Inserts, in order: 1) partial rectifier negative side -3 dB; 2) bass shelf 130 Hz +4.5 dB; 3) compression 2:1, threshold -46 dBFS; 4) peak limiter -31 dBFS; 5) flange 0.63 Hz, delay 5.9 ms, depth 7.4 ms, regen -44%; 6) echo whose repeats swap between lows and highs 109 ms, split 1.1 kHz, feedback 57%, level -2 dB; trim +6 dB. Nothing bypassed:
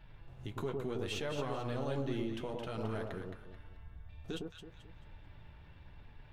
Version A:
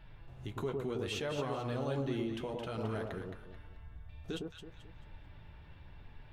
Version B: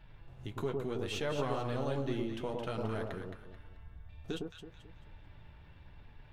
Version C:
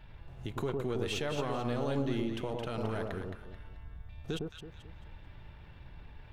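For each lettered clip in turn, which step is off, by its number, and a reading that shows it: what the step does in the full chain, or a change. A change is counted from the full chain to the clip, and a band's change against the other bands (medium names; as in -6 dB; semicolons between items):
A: 1, distortion -16 dB; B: 4, crest factor change +2.5 dB; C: 5, loudness change +4.0 LU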